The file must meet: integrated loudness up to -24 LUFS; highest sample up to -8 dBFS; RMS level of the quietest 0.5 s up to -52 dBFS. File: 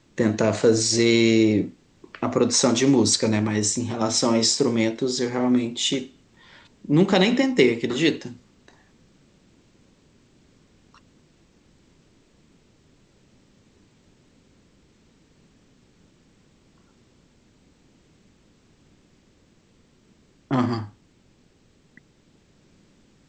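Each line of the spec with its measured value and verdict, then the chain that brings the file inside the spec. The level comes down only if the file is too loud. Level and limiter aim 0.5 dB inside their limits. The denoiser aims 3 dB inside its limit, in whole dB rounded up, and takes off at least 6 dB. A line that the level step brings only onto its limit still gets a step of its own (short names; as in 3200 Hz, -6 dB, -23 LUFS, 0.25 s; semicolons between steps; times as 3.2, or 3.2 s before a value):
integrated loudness -21.0 LUFS: fail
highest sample -5.0 dBFS: fail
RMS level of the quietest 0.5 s -59 dBFS: OK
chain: gain -3.5 dB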